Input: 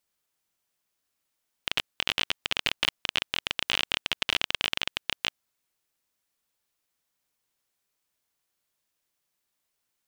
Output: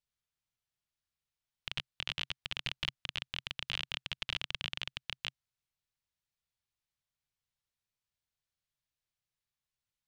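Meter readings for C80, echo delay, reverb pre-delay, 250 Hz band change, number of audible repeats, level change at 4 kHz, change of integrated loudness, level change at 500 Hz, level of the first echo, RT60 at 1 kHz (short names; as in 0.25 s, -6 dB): none, none, none, -11.0 dB, none, -9.5 dB, -10.0 dB, -14.5 dB, none, none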